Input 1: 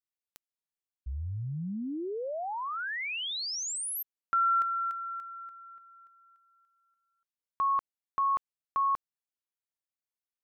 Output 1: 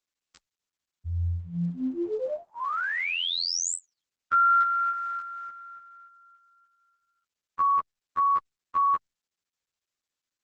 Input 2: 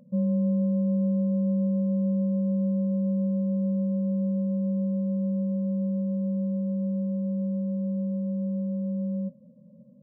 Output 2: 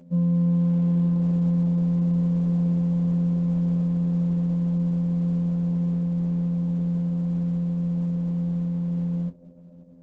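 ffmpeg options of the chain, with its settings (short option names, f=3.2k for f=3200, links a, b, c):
-af "afftfilt=real='hypot(re,im)*cos(PI*b)':imag='0':win_size=2048:overlap=0.75,asuperstop=centerf=790:order=8:qfactor=2.2,volume=9dB" -ar 48000 -c:a libopus -b:a 10k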